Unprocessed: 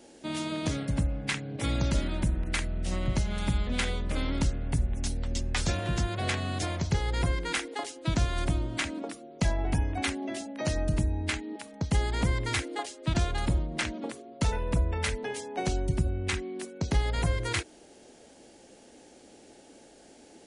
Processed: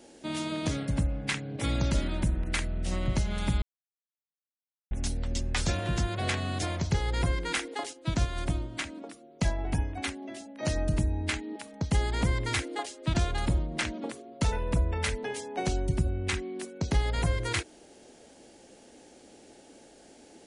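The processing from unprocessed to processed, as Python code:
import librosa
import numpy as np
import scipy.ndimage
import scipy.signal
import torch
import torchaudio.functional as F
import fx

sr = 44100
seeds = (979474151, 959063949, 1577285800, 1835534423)

y = fx.upward_expand(x, sr, threshold_db=-34.0, expansion=1.5, at=(7.93, 10.63))
y = fx.edit(y, sr, fx.silence(start_s=3.62, length_s=1.29), tone=tone)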